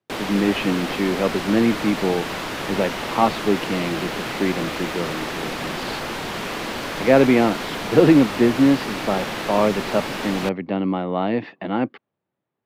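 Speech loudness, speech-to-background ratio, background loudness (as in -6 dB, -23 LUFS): -21.0 LUFS, 6.5 dB, -27.5 LUFS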